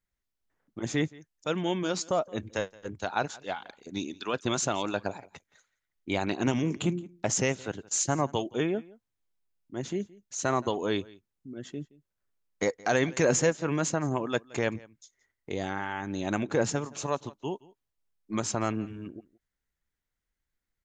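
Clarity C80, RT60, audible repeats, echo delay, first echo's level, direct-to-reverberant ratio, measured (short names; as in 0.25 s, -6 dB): none, none, 1, 0.171 s, -22.5 dB, none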